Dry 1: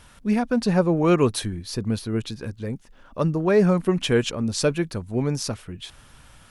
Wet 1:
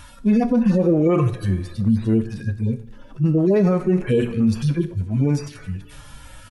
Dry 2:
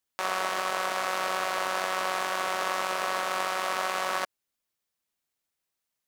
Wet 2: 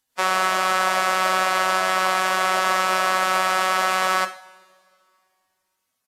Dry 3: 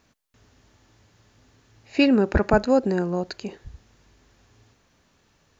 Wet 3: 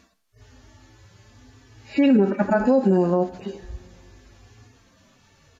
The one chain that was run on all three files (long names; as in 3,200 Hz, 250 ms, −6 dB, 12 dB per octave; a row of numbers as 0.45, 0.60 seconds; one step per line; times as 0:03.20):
harmonic-percussive split with one part muted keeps harmonic
coupled-rooms reverb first 0.46 s, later 2.4 s, from −21 dB, DRR 9.5 dB
brickwall limiter −19.5 dBFS
downsampling to 32,000 Hz
loudness normalisation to −20 LKFS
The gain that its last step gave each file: +9.5, +12.5, +9.5 decibels